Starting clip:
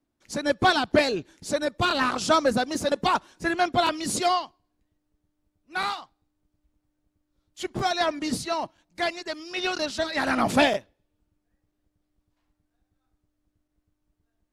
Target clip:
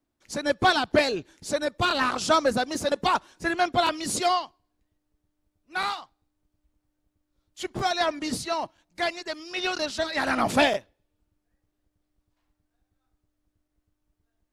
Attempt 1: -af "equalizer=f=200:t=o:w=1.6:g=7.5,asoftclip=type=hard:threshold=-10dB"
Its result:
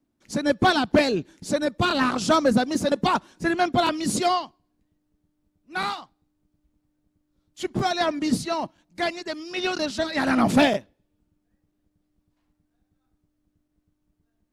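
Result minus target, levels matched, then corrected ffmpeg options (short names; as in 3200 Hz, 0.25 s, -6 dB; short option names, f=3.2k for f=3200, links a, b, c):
250 Hz band +5.5 dB
-af "equalizer=f=200:t=o:w=1.6:g=-3,asoftclip=type=hard:threshold=-10dB"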